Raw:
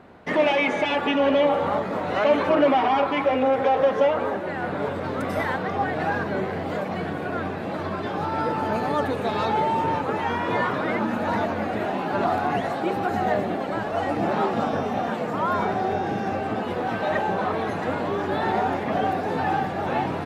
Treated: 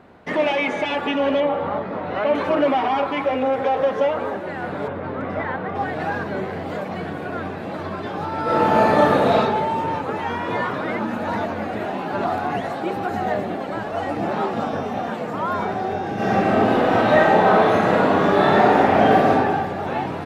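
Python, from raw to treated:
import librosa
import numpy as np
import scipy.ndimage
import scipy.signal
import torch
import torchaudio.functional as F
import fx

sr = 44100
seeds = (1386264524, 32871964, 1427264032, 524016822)

y = fx.air_absorb(x, sr, metres=200.0, at=(1.4, 2.35))
y = fx.lowpass(y, sr, hz=2400.0, slope=12, at=(4.87, 5.74), fade=0.02)
y = fx.reverb_throw(y, sr, start_s=8.43, length_s=0.91, rt60_s=1.2, drr_db=-8.0)
y = fx.reverb_throw(y, sr, start_s=16.14, length_s=3.16, rt60_s=1.5, drr_db=-9.0)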